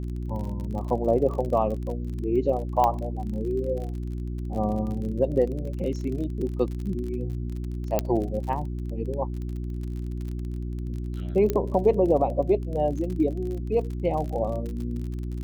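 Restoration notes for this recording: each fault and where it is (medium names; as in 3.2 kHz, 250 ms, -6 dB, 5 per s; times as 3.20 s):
crackle 34 per s -33 dBFS
hum 60 Hz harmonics 6 -31 dBFS
2.84 s: pop -11 dBFS
7.99 s: pop -9 dBFS
11.50 s: pop -12 dBFS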